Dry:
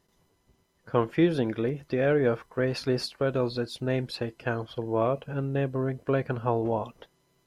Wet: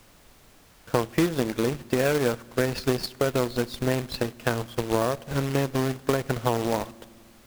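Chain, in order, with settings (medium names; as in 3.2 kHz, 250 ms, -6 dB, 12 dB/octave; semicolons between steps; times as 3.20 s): in parallel at -8 dB: Schmitt trigger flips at -29 dBFS; on the sum: Chebyshev shaper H 7 -21 dB, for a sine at -9.5 dBFS; companded quantiser 4-bit; compression 5:1, threshold -27 dBFS, peak gain reduction 11.5 dB; on a send at -22.5 dB: reverberation RT60 1.9 s, pre-delay 4 ms; on the sum: added noise pink -62 dBFS; trim +7.5 dB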